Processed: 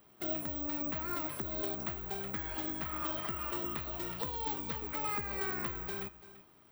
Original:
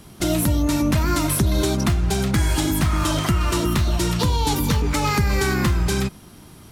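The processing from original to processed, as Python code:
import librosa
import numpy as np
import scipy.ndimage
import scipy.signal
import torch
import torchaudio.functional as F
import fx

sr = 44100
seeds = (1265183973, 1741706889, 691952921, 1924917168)

p1 = fx.bass_treble(x, sr, bass_db=-13, treble_db=-14)
p2 = fx.comb_fb(p1, sr, f0_hz=610.0, decay_s=0.39, harmonics='all', damping=0.0, mix_pct=60)
p3 = p2 + fx.echo_single(p2, sr, ms=339, db=-16.0, dry=0)
p4 = (np.kron(p3[::2], np.eye(2)[0]) * 2)[:len(p3)]
y = p4 * 10.0 ** (-7.0 / 20.0)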